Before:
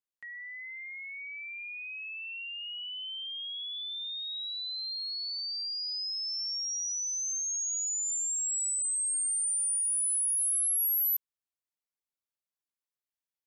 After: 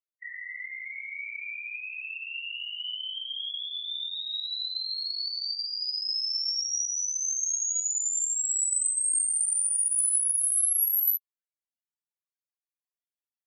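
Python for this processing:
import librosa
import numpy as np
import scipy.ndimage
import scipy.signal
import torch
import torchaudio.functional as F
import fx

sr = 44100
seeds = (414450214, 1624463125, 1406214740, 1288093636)

y = fx.whisperise(x, sr, seeds[0])
y = fx.spec_topn(y, sr, count=8)
y = y * librosa.db_to_amplitude(4.5)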